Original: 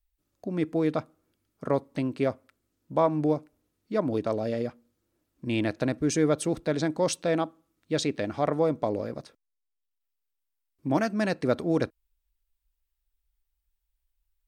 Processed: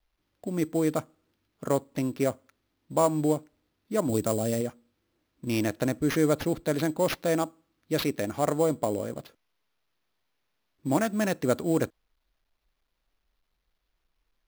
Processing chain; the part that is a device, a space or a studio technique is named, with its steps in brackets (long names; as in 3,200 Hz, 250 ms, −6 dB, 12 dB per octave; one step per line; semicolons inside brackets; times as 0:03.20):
early companding sampler (sample-rate reduction 8,100 Hz, jitter 0%; log-companded quantiser 8 bits)
0:04.09–0:04.61: bass and treble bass +5 dB, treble +8 dB